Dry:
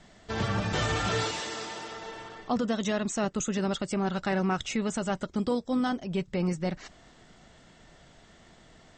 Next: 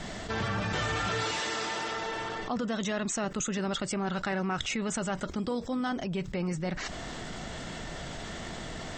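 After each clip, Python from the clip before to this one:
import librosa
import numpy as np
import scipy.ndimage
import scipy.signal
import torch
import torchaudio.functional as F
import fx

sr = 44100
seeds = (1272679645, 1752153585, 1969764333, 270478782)

y = fx.dynamic_eq(x, sr, hz=1700.0, q=0.75, threshold_db=-44.0, ratio=4.0, max_db=4)
y = fx.env_flatten(y, sr, amount_pct=70)
y = F.gain(torch.from_numpy(y), -6.0).numpy()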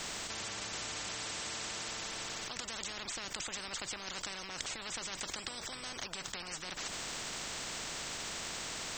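y = fx.spectral_comp(x, sr, ratio=10.0)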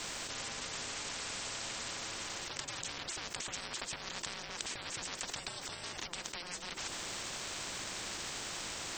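y = x * np.sin(2.0 * np.pi * 350.0 * np.arange(len(x)) / sr)
y = F.gain(torch.from_numpy(y), 2.5).numpy()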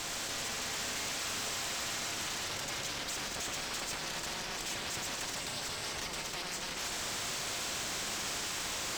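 y = fx.tube_stage(x, sr, drive_db=42.0, bias=0.5)
y = fx.rev_schroeder(y, sr, rt60_s=3.1, comb_ms=29, drr_db=3.0)
y = F.gain(torch.from_numpy(y), 8.0).numpy()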